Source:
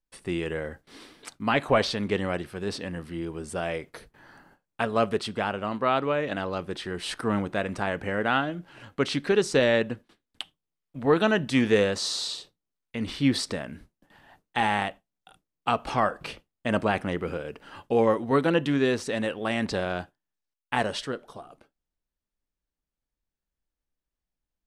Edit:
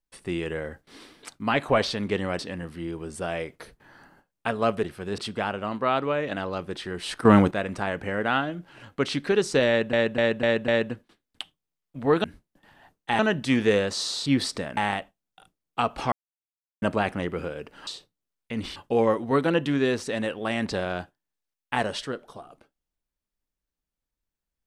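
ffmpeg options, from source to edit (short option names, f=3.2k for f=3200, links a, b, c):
-filter_complex "[0:a]asplit=18[a][b][c][d][e][f][g][h][i][j][k][l][m][n][o][p][q][r];[a]atrim=end=2.392[s];[b]atrim=start=2.728:end=5.182[t];[c]atrim=start=2.388:end=2.732[u];[d]atrim=start=5.178:end=7.252[v];[e]atrim=start=7.248:end=7.512,asetpts=PTS-STARTPTS,volume=10.5dB[w];[f]atrim=start=7.508:end=9.932[x];[g]atrim=start=9.678:end=9.932[y];[h]atrim=start=9.678:end=9.932[z];[i]atrim=start=9.678:end=9.932[aa];[j]atrim=start=9.678:end=11.242[ab];[k]atrim=start=13.708:end=14.662[ac];[l]atrim=start=11.238:end=12.312[ad];[m]atrim=start=13.198:end=13.712[ae];[n]atrim=start=14.658:end=16.01,asetpts=PTS-STARTPTS,afade=t=out:st=1.348:d=0.004:c=hsin[af];[o]atrim=start=16.01:end=16.71,asetpts=PTS-STARTPTS,volume=0[ag];[p]atrim=start=16.71:end=17.762,asetpts=PTS-STARTPTS,afade=t=in:d=0.004:c=hsin[ah];[q]atrim=start=12.308:end=13.202[ai];[r]atrim=start=17.758[aj];[s][t]acrossfade=d=0.004:c1=hsin:c2=hsin[ak];[ak][u]acrossfade=d=0.004:c1=hsin:c2=hsin[al];[al][v]acrossfade=d=0.004:c1=hsin:c2=hsin[am];[am][w]acrossfade=d=0.004:c1=hsin:c2=hsin[an];[an][x]acrossfade=d=0.004:c1=hsin:c2=hsin[ao];[ao][y]acrossfade=d=0.004:c1=hsin:c2=hsin[ap];[ap][z]acrossfade=d=0.004:c1=hsin:c2=hsin[aq];[aq][aa]acrossfade=d=0.004:c1=hsin:c2=hsin[ar];[ar][ab]acrossfade=d=0.004:c1=hsin:c2=hsin[as];[as][ac]acrossfade=d=0.004:c1=hsin:c2=hsin[at];[at][ad]acrossfade=d=0.004:c1=hsin:c2=hsin[au];[au][ae]acrossfade=d=0.004:c1=hsin:c2=hsin[av];[af][ag][ah]concat=n=3:v=0:a=1[aw];[av][aw]acrossfade=d=0.004:c1=hsin:c2=hsin[ax];[ax][ai]acrossfade=d=0.004:c1=hsin:c2=hsin[ay];[ay][aj]acrossfade=d=0.004:c1=hsin:c2=hsin"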